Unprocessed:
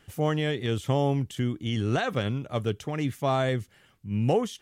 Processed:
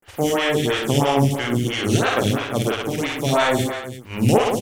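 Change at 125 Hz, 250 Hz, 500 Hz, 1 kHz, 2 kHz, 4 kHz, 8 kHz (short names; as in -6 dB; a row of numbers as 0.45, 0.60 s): +5.0, +7.5, +8.0, +9.0, +11.0, +11.0, +16.0 dB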